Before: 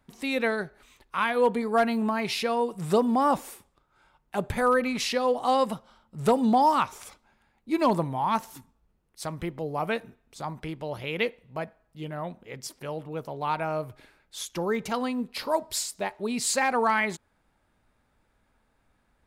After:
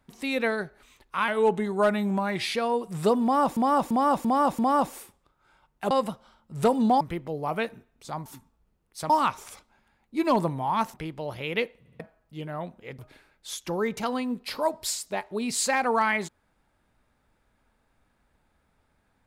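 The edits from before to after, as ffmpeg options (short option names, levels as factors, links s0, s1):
-filter_complex "[0:a]asplit=16[s0][s1][s2][s3][s4][s5][s6][s7][s8][s9][s10][s11][s12][s13][s14][s15];[s0]atrim=end=1.284[s16];[s1]atrim=start=1.28:end=2.42,asetpts=PTS-STARTPTS,asetrate=39690,aresample=44100[s17];[s2]atrim=start=2.416:end=3.442[s18];[s3]atrim=start=3.098:end=3.442[s19];[s4]atrim=start=3.098:end=3.442[s20];[s5]atrim=start=3.098:end=3.442[s21];[s6]atrim=start=3.098:end=4.422[s22];[s7]atrim=start=5.538:end=6.642[s23];[s8]atrim=start=9.318:end=10.572[s24];[s9]atrim=start=8.478:end=9.322[s25];[s10]atrim=start=6.638:end=8.482[s26];[s11]atrim=start=10.568:end=11.492[s27];[s12]atrim=start=11.418:end=11.492[s28];[s13]atrim=start=11.418:end=11.492[s29];[s14]atrim=start=11.628:end=12.622[s30];[s15]atrim=start=13.868[s31];[s16][s17]acrossfade=d=0.004:c1=hsin:c2=hsin[s32];[s32][s18]acrossfade=d=0.004:c1=hsin:c2=hsin[s33];[s33][s19]acrossfade=d=0.004:c1=hsin:c2=hsin[s34];[s34][s20]acrossfade=d=0.004:c1=hsin:c2=hsin[s35];[s35][s21]acrossfade=d=0.004:c1=hsin:c2=hsin[s36];[s36][s22]acrossfade=d=0.004:c1=hsin:c2=hsin[s37];[s37][s23]acrossfade=d=0.004:c1=hsin:c2=hsin[s38];[s38][s24]acrossfade=d=0.004:c1=hsin:c2=hsin[s39];[s39][s25]acrossfade=d=0.004:c1=hsin:c2=hsin[s40];[s40][s26]acrossfade=d=0.004:c1=hsin:c2=hsin[s41];[s41][s27]acrossfade=d=0.004:c1=hsin:c2=hsin[s42];[s42][s28]acrossfade=d=0.004:c1=hsin:c2=hsin[s43];[s43][s29]acrossfade=d=0.004:c1=hsin:c2=hsin[s44];[s44][s30]acrossfade=d=0.004:c1=hsin:c2=hsin[s45];[s45][s31]acrossfade=d=0.004:c1=hsin:c2=hsin"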